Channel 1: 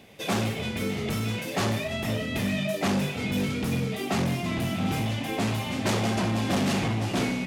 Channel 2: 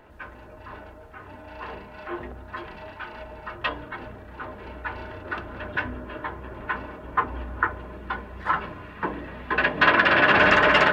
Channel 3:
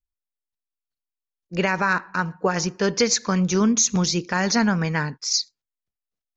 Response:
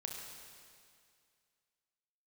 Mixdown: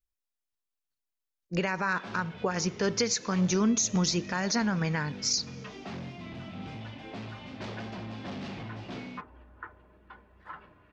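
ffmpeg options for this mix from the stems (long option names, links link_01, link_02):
-filter_complex "[0:a]lowpass=frequency=5100:width=0.5412,lowpass=frequency=5100:width=1.3066,adelay=1750,volume=-13.5dB[link_01];[1:a]adelay=2000,volume=-20dB[link_02];[2:a]alimiter=limit=-11.5dB:level=0:latency=1:release=311,volume=-1dB,asplit=2[link_03][link_04];[link_04]volume=-21dB[link_05];[3:a]atrim=start_sample=2205[link_06];[link_05][link_06]afir=irnorm=-1:irlink=0[link_07];[link_01][link_02][link_03][link_07]amix=inputs=4:normalize=0,alimiter=limit=-17.5dB:level=0:latency=1:release=357"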